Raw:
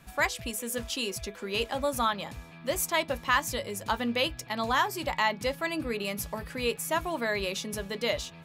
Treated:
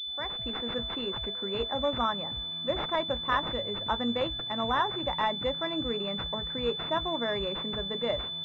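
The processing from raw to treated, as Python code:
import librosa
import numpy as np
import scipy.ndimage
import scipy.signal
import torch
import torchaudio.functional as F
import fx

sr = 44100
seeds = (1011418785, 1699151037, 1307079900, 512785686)

y = fx.fade_in_head(x, sr, length_s=0.55)
y = fx.pwm(y, sr, carrier_hz=3500.0)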